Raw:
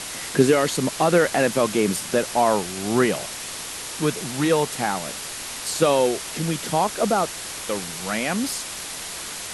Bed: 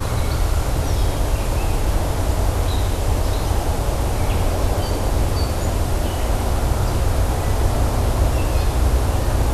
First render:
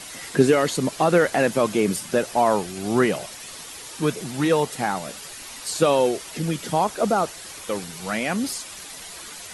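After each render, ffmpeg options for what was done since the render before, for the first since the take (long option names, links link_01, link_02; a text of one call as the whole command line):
ffmpeg -i in.wav -af "afftdn=noise_reduction=9:noise_floor=-34" out.wav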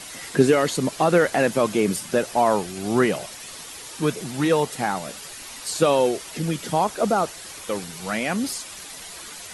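ffmpeg -i in.wav -af anull out.wav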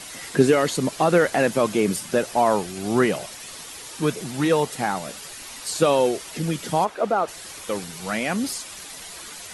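ffmpeg -i in.wav -filter_complex "[0:a]asplit=3[link_01][link_02][link_03];[link_01]afade=type=out:start_time=6.84:duration=0.02[link_04];[link_02]bass=frequency=250:gain=-11,treble=frequency=4000:gain=-14,afade=type=in:start_time=6.84:duration=0.02,afade=type=out:start_time=7.27:duration=0.02[link_05];[link_03]afade=type=in:start_time=7.27:duration=0.02[link_06];[link_04][link_05][link_06]amix=inputs=3:normalize=0" out.wav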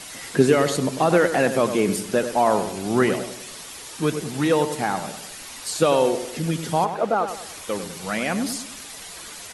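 ffmpeg -i in.wav -filter_complex "[0:a]asplit=2[link_01][link_02];[link_02]adelay=98,lowpass=frequency=2000:poles=1,volume=-9dB,asplit=2[link_03][link_04];[link_04]adelay=98,lowpass=frequency=2000:poles=1,volume=0.44,asplit=2[link_05][link_06];[link_06]adelay=98,lowpass=frequency=2000:poles=1,volume=0.44,asplit=2[link_07][link_08];[link_08]adelay=98,lowpass=frequency=2000:poles=1,volume=0.44,asplit=2[link_09][link_10];[link_10]adelay=98,lowpass=frequency=2000:poles=1,volume=0.44[link_11];[link_01][link_03][link_05][link_07][link_09][link_11]amix=inputs=6:normalize=0" out.wav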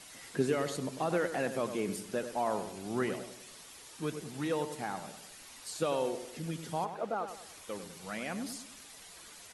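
ffmpeg -i in.wav -af "volume=-13.5dB" out.wav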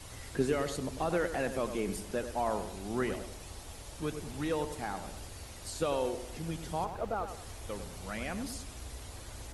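ffmpeg -i in.wav -i bed.wav -filter_complex "[1:a]volume=-28dB[link_01];[0:a][link_01]amix=inputs=2:normalize=0" out.wav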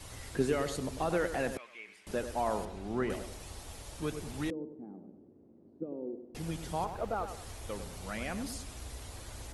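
ffmpeg -i in.wav -filter_complex "[0:a]asettb=1/sr,asplit=3[link_01][link_02][link_03];[link_01]atrim=end=1.574[link_04];[link_02]atrim=start=1.57:end=2.07,asetpts=PTS-STARTPTS,afade=type=in:duration=0.004:curve=qsin,afade=type=out:start_time=0.496:duration=0.004:curve=qsin,bandpass=frequency=2200:width_type=q:width=3.2[link_05];[link_03]atrim=start=2.066[link_06];[link_04][link_05]acrossfade=duration=0.004:curve1=hsin:curve2=qsin[link_07];[link_07][link_06]acrossfade=duration=0.004:curve1=qsin:curve2=hsin,asettb=1/sr,asplit=3[link_08][link_09][link_10];[link_08]atrim=end=2.654[link_11];[link_09]atrim=start=2.65:end=3.1,asetpts=PTS-STARTPTS,afade=type=in:duration=0.004:curve=qsin,afade=type=out:start_time=0.446:duration=0.004:curve=qsin,aemphasis=mode=reproduction:type=75kf[link_12];[link_10]atrim=start=3.096[link_13];[link_11][link_12]acrossfade=duration=0.004:curve1=hsin:curve2=qsin[link_14];[link_14][link_13]acrossfade=duration=0.004:curve1=qsin:curve2=hsin,asettb=1/sr,asplit=3[link_15][link_16][link_17];[link_15]atrim=end=4.504[link_18];[link_16]atrim=start=4.5:end=6.35,asetpts=PTS-STARTPTS,afade=type=in:duration=0.004:curve=qsin,afade=type=out:start_time=1.846:duration=0.004:curve=qsin,asuperpass=centerf=270:order=4:qfactor=1.4[link_19];[link_17]atrim=start=6.346[link_20];[link_18][link_19]acrossfade=duration=0.004:curve1=hsin:curve2=qsin[link_21];[link_21][link_20]acrossfade=duration=0.004:curve1=qsin:curve2=hsin" out.wav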